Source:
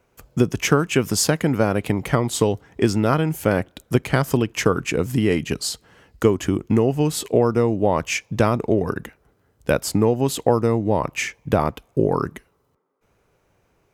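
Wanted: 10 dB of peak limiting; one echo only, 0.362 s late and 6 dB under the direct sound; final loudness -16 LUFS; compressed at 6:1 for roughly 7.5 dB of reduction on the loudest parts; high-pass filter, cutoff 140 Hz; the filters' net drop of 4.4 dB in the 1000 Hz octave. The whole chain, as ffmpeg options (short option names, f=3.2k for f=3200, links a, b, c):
-af "highpass=140,equalizer=f=1k:t=o:g=-6,acompressor=threshold=-21dB:ratio=6,alimiter=limit=-17.5dB:level=0:latency=1,aecho=1:1:362:0.501,volume=13dB"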